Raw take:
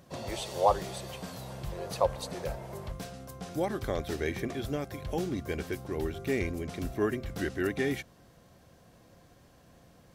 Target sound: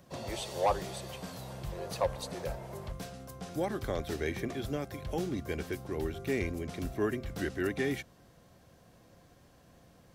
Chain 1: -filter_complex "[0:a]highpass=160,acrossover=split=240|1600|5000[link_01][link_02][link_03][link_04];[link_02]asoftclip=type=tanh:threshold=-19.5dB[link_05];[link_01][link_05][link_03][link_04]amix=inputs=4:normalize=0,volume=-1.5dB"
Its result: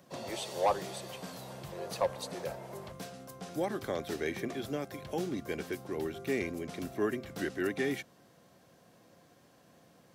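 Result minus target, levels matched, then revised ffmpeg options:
125 Hz band −5.0 dB
-filter_complex "[0:a]acrossover=split=240|1600|5000[link_01][link_02][link_03][link_04];[link_02]asoftclip=type=tanh:threshold=-19.5dB[link_05];[link_01][link_05][link_03][link_04]amix=inputs=4:normalize=0,volume=-1.5dB"

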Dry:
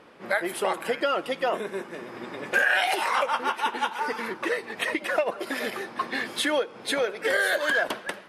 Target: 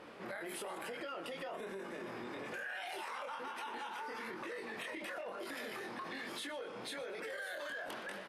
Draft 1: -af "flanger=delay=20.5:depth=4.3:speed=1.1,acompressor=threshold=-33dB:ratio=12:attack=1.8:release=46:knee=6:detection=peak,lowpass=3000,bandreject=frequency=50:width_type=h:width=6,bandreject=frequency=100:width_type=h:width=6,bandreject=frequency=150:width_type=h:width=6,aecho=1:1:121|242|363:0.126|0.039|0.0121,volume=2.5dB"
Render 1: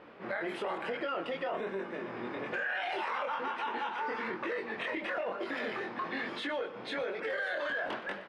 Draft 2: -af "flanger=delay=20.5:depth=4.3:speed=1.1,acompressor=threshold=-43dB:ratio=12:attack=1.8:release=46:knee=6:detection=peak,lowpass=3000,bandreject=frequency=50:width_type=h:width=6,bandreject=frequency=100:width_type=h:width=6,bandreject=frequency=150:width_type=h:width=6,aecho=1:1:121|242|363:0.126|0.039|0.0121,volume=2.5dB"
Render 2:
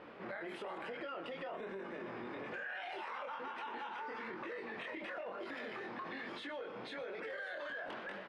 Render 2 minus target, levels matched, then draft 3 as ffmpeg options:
4,000 Hz band −3.5 dB
-af "flanger=delay=20.5:depth=4.3:speed=1.1,acompressor=threshold=-43dB:ratio=12:attack=1.8:release=46:knee=6:detection=peak,bandreject=frequency=50:width_type=h:width=6,bandreject=frequency=100:width_type=h:width=6,bandreject=frequency=150:width_type=h:width=6,aecho=1:1:121|242|363:0.126|0.039|0.0121,volume=2.5dB"

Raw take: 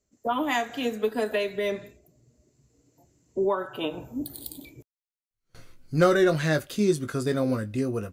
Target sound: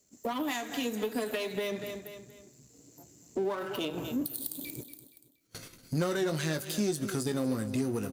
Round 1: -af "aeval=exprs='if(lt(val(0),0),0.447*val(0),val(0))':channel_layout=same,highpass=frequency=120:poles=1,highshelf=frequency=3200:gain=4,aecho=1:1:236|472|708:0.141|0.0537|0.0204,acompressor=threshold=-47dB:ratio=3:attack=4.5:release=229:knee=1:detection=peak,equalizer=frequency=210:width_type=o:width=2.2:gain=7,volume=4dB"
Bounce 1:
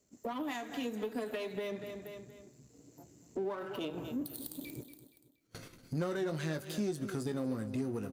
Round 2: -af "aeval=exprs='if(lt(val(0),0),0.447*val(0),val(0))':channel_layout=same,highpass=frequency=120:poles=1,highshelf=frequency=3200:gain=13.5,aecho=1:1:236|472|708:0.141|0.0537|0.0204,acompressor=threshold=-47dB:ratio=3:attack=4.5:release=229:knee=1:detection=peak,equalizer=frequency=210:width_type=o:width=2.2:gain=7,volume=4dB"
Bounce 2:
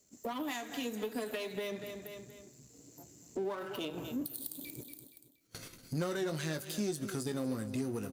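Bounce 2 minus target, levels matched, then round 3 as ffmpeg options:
downward compressor: peak gain reduction +5 dB
-af "aeval=exprs='if(lt(val(0),0),0.447*val(0),val(0))':channel_layout=same,highpass=frequency=120:poles=1,highshelf=frequency=3200:gain=13.5,aecho=1:1:236|472|708:0.141|0.0537|0.0204,acompressor=threshold=-39.5dB:ratio=3:attack=4.5:release=229:knee=1:detection=peak,equalizer=frequency=210:width_type=o:width=2.2:gain=7,volume=4dB"

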